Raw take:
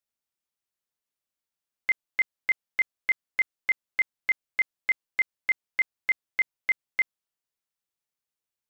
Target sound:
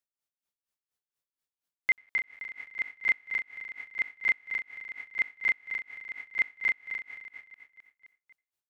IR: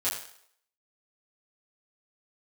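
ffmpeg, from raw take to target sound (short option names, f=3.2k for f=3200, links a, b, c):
-filter_complex "[0:a]aecho=1:1:261|522|783|1044|1305:0.668|0.281|0.118|0.0495|0.0208,asplit=2[a][b];[1:a]atrim=start_sample=2205,afade=t=out:st=0.13:d=0.01,atrim=end_sample=6174,adelay=88[c];[b][c]afir=irnorm=-1:irlink=0,volume=-19.5dB[d];[a][d]amix=inputs=2:normalize=0,aeval=exprs='val(0)*pow(10,-19*(0.5-0.5*cos(2*PI*4.2*n/s))/20)':c=same"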